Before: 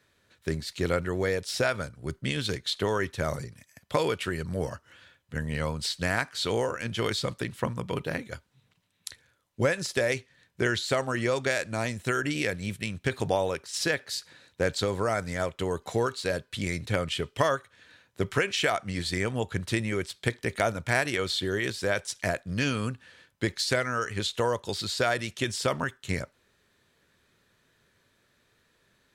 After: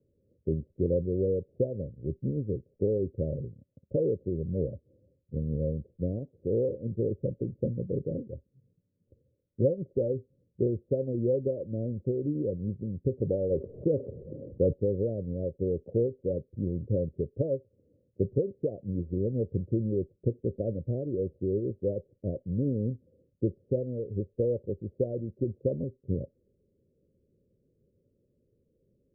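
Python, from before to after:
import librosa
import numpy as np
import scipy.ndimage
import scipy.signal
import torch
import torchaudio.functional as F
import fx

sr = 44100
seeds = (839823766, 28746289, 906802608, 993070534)

y = scipy.signal.sosfilt(scipy.signal.cheby1(6, 1.0, 550.0, 'lowpass', fs=sr, output='sos'), x)
y = fx.env_flatten(y, sr, amount_pct=50, at=(13.5, 14.72), fade=0.02)
y = y * librosa.db_to_amplitude(1.5)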